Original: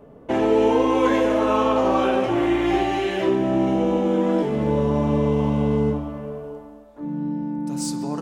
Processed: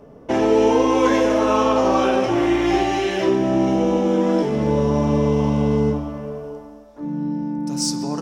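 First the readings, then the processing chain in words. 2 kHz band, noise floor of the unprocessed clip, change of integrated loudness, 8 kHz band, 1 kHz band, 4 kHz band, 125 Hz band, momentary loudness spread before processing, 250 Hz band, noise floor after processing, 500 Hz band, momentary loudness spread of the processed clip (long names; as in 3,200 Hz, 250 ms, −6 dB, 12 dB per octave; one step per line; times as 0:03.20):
+2.5 dB, −45 dBFS, +2.0 dB, can't be measured, +2.0 dB, +4.5 dB, +2.0 dB, 11 LU, +2.0 dB, −43 dBFS, +2.0 dB, 11 LU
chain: parametric band 5,500 Hz +12 dB 0.4 octaves
level +2 dB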